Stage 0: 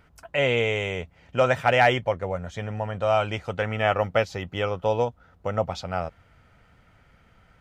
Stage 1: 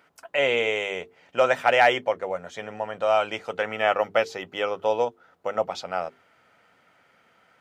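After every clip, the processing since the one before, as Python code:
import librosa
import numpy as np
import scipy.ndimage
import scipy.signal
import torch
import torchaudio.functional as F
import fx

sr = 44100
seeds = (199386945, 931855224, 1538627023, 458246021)

y = scipy.signal.sosfilt(scipy.signal.butter(2, 310.0, 'highpass', fs=sr, output='sos'), x)
y = fx.hum_notches(y, sr, base_hz=50, count=9)
y = y * librosa.db_to_amplitude(1.0)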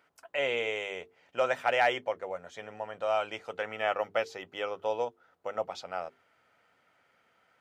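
y = fx.peak_eq(x, sr, hz=190.0, db=-3.5, octaves=0.9)
y = y * librosa.db_to_amplitude(-7.5)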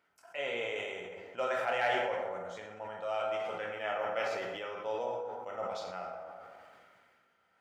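y = fx.rev_plate(x, sr, seeds[0], rt60_s=1.3, hf_ratio=0.55, predelay_ms=0, drr_db=0.0)
y = fx.sustainer(y, sr, db_per_s=25.0)
y = y * librosa.db_to_amplitude(-8.0)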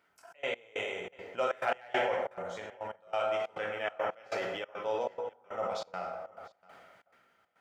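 y = fx.step_gate(x, sr, bpm=139, pattern='xxx.x..xxx.', floor_db=-24.0, edge_ms=4.5)
y = y + 10.0 ** (-23.5 / 20.0) * np.pad(y, (int(691 * sr / 1000.0), 0))[:len(y)]
y = y * librosa.db_to_amplitude(3.0)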